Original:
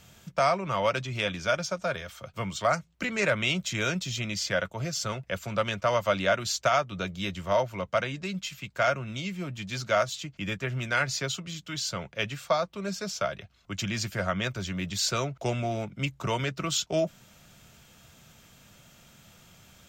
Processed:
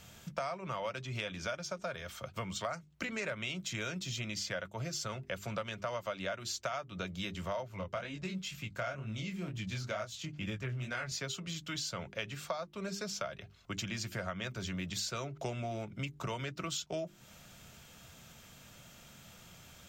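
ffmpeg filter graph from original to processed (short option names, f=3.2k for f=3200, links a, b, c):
-filter_complex "[0:a]asettb=1/sr,asplit=3[a][b][c];[a]atrim=end=7.684[d];[b]atrim=start=7.68:end=11.12,asetpts=PTS-STARTPTS,afade=t=in:d=0.004:c=qsin,afade=t=out:st=3.436:d=0.004:c=qsin,lowshelf=f=180:g=7.5,flanger=delay=18.5:depth=7.1:speed=2.1[e];[c]atrim=start=11.116[f];[d][e]acrossfade=d=0.004:c1=hsin:c2=qsin[g];[g][f]acrossfade=d=0.004:c1=qsin:c2=hsin,bandreject=f=50:t=h:w=6,bandreject=f=100:t=h:w=6,bandreject=f=150:t=h:w=6,bandreject=f=200:t=h:w=6,bandreject=f=250:t=h:w=6,bandreject=f=300:t=h:w=6,bandreject=f=350:t=h:w=6,bandreject=f=400:t=h:w=6,acompressor=threshold=-36dB:ratio=5"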